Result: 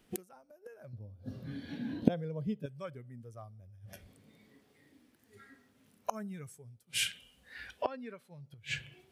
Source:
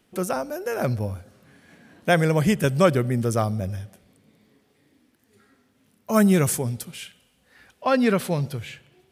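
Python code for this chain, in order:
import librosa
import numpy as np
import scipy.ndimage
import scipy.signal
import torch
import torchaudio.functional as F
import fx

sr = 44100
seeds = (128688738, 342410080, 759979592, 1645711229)

y = fx.gate_flip(x, sr, shuts_db=-24.0, range_db=-31)
y = fx.noise_reduce_blind(y, sr, reduce_db=10)
y = fx.graphic_eq(y, sr, hz=(125, 250, 500, 2000, 4000, 8000), db=(6, 10, 6, -9, 9, -10), at=(0.93, 2.66))
y = y * librosa.db_to_amplitude(6.5)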